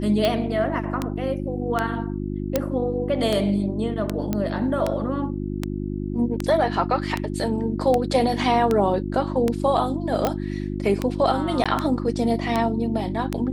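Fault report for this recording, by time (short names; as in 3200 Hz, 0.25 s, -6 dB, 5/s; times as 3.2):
hum 50 Hz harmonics 7 -28 dBFS
tick 78 rpm -9 dBFS
2.56 pop
4.33 pop -11 dBFS
10.27 pop -11 dBFS
11.64–11.66 gap 16 ms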